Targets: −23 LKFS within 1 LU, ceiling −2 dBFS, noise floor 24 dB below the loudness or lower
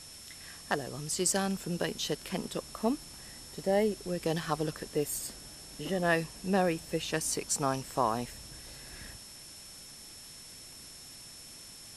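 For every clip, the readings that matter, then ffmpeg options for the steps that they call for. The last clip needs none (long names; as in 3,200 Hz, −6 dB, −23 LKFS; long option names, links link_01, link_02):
interfering tone 5,400 Hz; level of the tone −51 dBFS; background noise floor −49 dBFS; target noise floor −56 dBFS; integrated loudness −32.0 LKFS; sample peak −14.0 dBFS; target loudness −23.0 LKFS
→ -af "bandreject=frequency=5400:width=30"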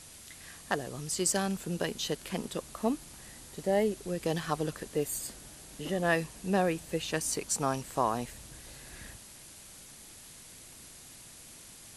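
interfering tone none found; background noise floor −51 dBFS; target noise floor −57 dBFS
→ -af "afftdn=noise_reduction=6:noise_floor=-51"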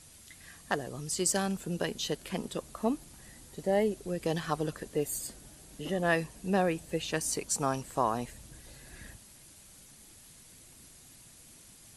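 background noise floor −55 dBFS; target noise floor −57 dBFS
→ -af "afftdn=noise_reduction=6:noise_floor=-55"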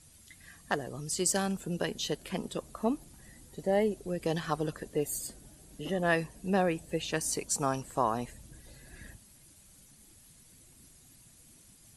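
background noise floor −58 dBFS; integrated loudness −32.5 LKFS; sample peak −14.0 dBFS; target loudness −23.0 LKFS
→ -af "volume=9.5dB"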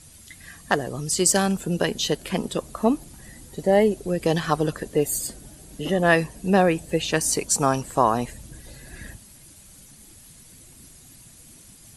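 integrated loudness −23.0 LKFS; sample peak −4.5 dBFS; background noise floor −49 dBFS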